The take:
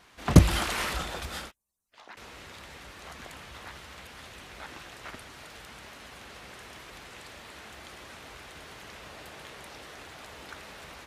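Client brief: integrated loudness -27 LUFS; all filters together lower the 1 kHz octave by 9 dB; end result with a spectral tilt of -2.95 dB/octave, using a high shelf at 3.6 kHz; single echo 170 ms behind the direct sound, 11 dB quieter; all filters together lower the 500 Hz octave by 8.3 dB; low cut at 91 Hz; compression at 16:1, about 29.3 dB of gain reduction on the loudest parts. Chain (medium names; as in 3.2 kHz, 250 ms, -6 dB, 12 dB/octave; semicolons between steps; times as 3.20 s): high-pass 91 Hz; peaking EQ 500 Hz -9 dB; peaking EQ 1 kHz -9 dB; treble shelf 3.6 kHz -6 dB; compression 16:1, threshold -41 dBFS; delay 170 ms -11 dB; trim +21.5 dB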